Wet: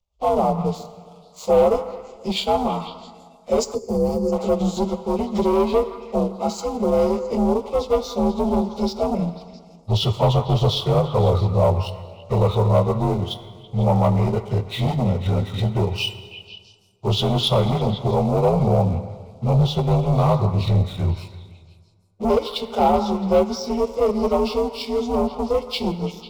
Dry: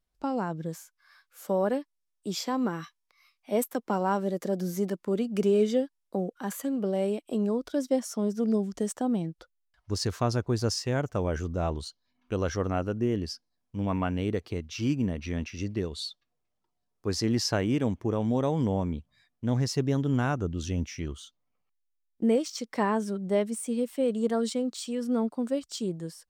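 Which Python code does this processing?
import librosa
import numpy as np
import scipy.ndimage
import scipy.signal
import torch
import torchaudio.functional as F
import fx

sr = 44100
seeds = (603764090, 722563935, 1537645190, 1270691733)

p1 = fx.partial_stretch(x, sr, pct=86)
p2 = scipy.signal.sosfilt(scipy.signal.ellip(4, 1.0, 40, 7500.0, 'lowpass', fs=sr, output='sos'), p1)
p3 = fx.high_shelf(p2, sr, hz=3300.0, db=-6.5)
p4 = fx.rider(p3, sr, range_db=10, speed_s=2.0)
p5 = p3 + F.gain(torch.from_numpy(p4), -3.0).numpy()
p6 = fx.leveller(p5, sr, passes=2)
p7 = fx.transient(p6, sr, attack_db=0, sustain_db=-7)
p8 = p7 + fx.echo_stepped(p7, sr, ms=166, hz=1300.0, octaves=0.7, feedback_pct=70, wet_db=-9.5, dry=0)
p9 = 10.0 ** (-15.0 / 20.0) * np.tanh(p8 / 10.0 ** (-15.0 / 20.0))
p10 = fx.fixed_phaser(p9, sr, hz=700.0, stages=4)
p11 = fx.rev_plate(p10, sr, seeds[0], rt60_s=1.9, hf_ratio=0.6, predelay_ms=0, drr_db=12.0)
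p12 = fx.spec_box(p11, sr, start_s=3.74, length_s=0.59, low_hz=530.0, high_hz=4200.0, gain_db=-17)
y = F.gain(torch.from_numpy(p12), 7.5).numpy()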